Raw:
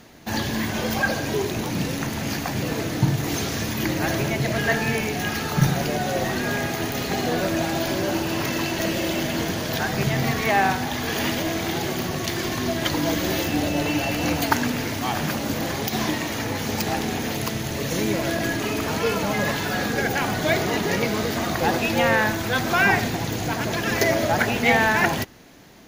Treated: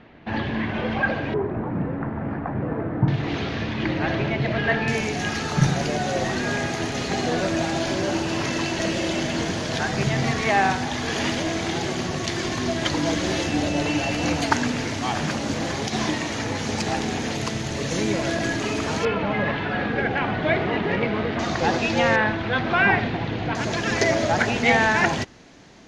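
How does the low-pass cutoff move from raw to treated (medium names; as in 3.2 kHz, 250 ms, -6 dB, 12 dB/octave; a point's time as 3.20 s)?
low-pass 24 dB/octave
3 kHz
from 1.34 s 1.5 kHz
from 3.08 s 3.7 kHz
from 4.88 s 8.3 kHz
from 19.05 s 3.1 kHz
from 21.39 s 6.4 kHz
from 22.16 s 3.5 kHz
from 23.55 s 7.5 kHz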